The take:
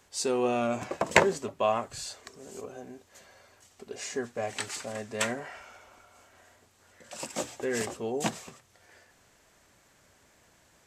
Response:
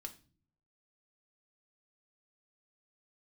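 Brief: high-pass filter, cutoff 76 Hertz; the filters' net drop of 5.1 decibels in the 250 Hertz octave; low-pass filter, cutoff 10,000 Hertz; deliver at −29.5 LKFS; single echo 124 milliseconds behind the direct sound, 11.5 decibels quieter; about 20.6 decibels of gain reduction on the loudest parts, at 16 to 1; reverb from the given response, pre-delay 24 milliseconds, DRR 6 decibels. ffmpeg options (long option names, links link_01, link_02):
-filter_complex "[0:a]highpass=76,lowpass=10000,equalizer=frequency=250:width_type=o:gain=-7,acompressor=threshold=-37dB:ratio=16,aecho=1:1:124:0.266,asplit=2[link_01][link_02];[1:a]atrim=start_sample=2205,adelay=24[link_03];[link_02][link_03]afir=irnorm=-1:irlink=0,volume=-2dB[link_04];[link_01][link_04]amix=inputs=2:normalize=0,volume=12dB"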